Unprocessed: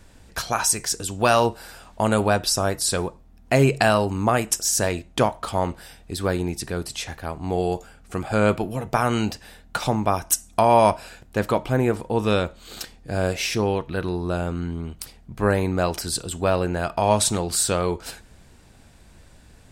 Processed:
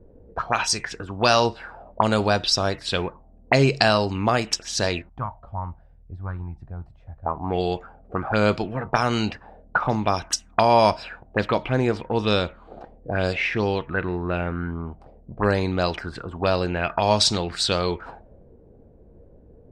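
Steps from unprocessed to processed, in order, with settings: 5.09–7.26 EQ curve 100 Hz 0 dB, 440 Hz -24 dB, 1500 Hz -9 dB; envelope low-pass 430–4900 Hz up, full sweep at -17.5 dBFS; gain -1 dB

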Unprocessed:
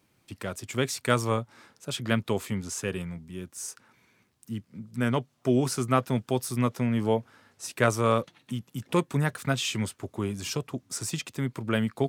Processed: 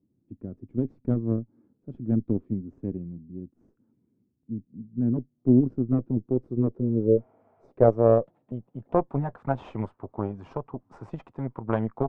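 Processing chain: added harmonics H 4 -11 dB, 5 -28 dB, 7 -21 dB, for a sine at -6.5 dBFS; low-pass sweep 280 Hz -> 910 Hz, 5.69–9.61; spectral repair 6.82–7.69, 610–3400 Hz before

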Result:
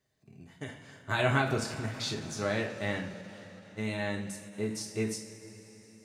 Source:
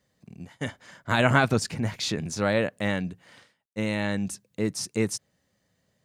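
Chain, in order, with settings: two-slope reverb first 0.39 s, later 4.5 s, from -18 dB, DRR -0.5 dB; ending taper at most 100 dB/s; gain -8.5 dB

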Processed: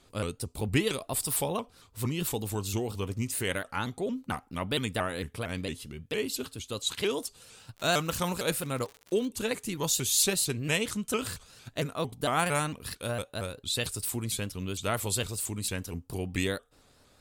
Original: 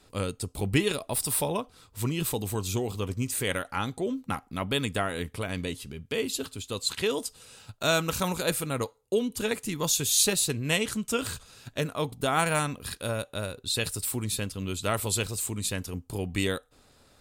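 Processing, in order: 7.76–9.26 crackle 170/s -35 dBFS; shaped vibrato saw up 4.4 Hz, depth 160 cents; gain -2 dB

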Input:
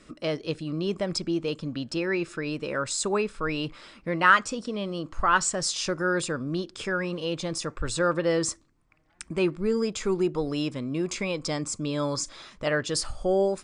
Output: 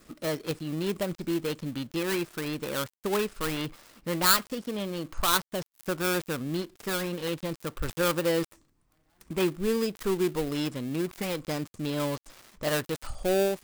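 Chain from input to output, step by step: switching dead time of 0.21 ms; high shelf 8200 Hz +10 dB; gain -1.5 dB

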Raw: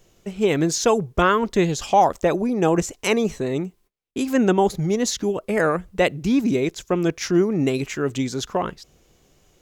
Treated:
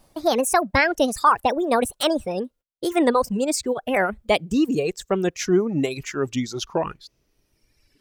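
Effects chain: speed glide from 162% -> 78%; reverb removal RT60 1.6 s

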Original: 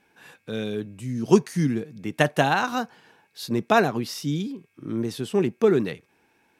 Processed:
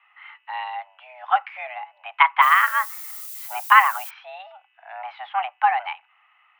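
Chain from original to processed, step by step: mistuned SSB +380 Hz 510–2400 Hz; 2.41–4.09 added noise violet -43 dBFS; gain +7 dB

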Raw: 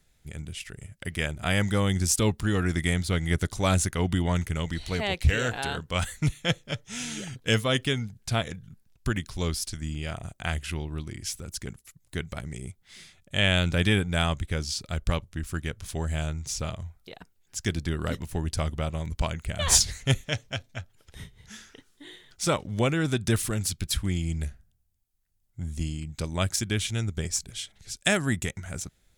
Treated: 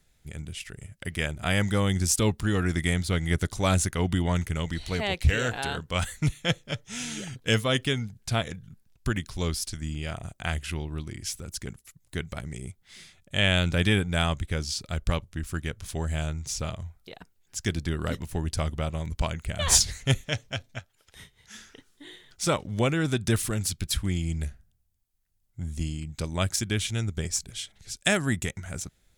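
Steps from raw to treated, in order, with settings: 20.79–21.55 low shelf 370 Hz -12 dB

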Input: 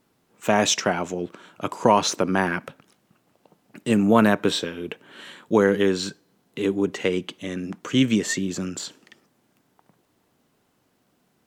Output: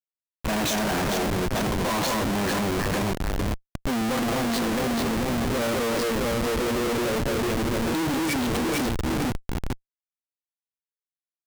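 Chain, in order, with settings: gliding pitch shift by +5.5 st starting unshifted; echo with dull and thin repeats by turns 0.221 s, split 1300 Hz, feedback 70%, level -2 dB; harmonic-percussive split percussive -4 dB; Schmitt trigger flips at -31.5 dBFS

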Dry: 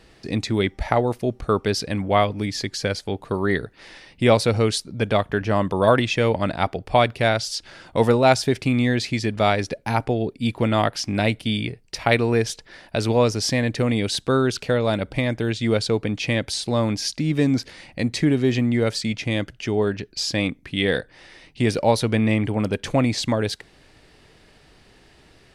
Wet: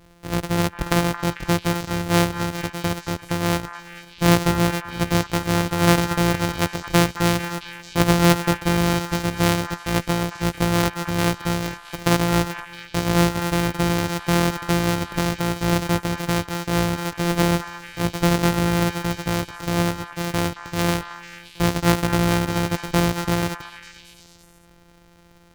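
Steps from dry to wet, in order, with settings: sample sorter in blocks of 256 samples; delay with a stepping band-pass 0.222 s, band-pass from 1300 Hz, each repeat 0.7 oct, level -7 dB

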